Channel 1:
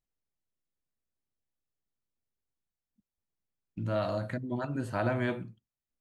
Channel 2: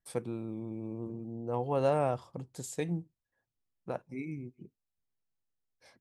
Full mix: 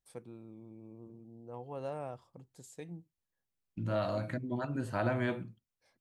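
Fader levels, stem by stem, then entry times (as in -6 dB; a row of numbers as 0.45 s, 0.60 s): -2.0 dB, -12.0 dB; 0.00 s, 0.00 s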